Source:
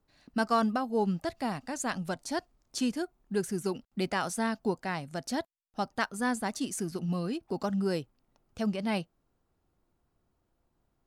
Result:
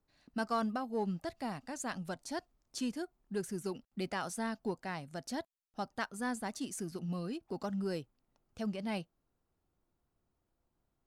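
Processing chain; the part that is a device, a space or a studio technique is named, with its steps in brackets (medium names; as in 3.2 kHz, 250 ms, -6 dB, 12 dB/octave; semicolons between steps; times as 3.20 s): parallel distortion (in parallel at -12 dB: hard clipper -28.5 dBFS, distortion -9 dB); on the sum: trim -8 dB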